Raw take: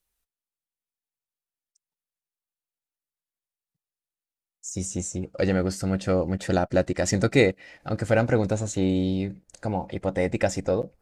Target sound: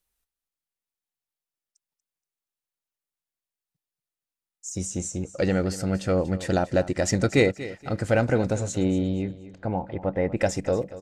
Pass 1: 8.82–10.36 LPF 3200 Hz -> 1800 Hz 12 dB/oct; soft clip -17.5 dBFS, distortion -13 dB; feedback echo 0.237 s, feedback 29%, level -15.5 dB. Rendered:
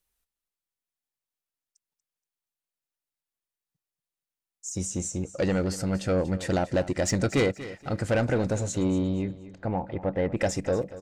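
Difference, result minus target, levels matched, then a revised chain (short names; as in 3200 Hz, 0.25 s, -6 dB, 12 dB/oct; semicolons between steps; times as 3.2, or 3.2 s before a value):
soft clip: distortion +17 dB
8.82–10.36 LPF 3200 Hz -> 1800 Hz 12 dB/oct; soft clip -5.5 dBFS, distortion -30 dB; feedback echo 0.237 s, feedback 29%, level -15.5 dB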